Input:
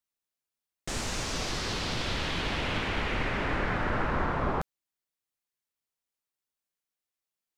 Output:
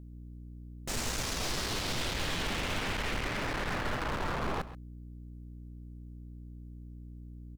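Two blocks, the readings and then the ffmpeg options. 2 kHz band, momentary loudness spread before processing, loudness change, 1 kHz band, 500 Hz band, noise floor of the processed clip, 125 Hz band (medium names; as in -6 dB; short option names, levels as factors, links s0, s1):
-3.0 dB, 5 LU, -3.0 dB, -4.0 dB, -4.0 dB, -47 dBFS, -3.0 dB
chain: -af "aeval=exprs='val(0)+0.00501*(sin(2*PI*60*n/s)+sin(2*PI*2*60*n/s)/2+sin(2*PI*3*60*n/s)/3+sin(2*PI*4*60*n/s)/4+sin(2*PI*5*60*n/s)/5)':c=same,asoftclip=type=hard:threshold=0.0266,highshelf=f=8700:g=5,aecho=1:1:133:0.168,aeval=exprs='0.075*(cos(1*acos(clip(val(0)/0.075,-1,1)))-cos(1*PI/2))+0.00668*(cos(6*acos(clip(val(0)/0.075,-1,1)))-cos(6*PI/2))':c=same"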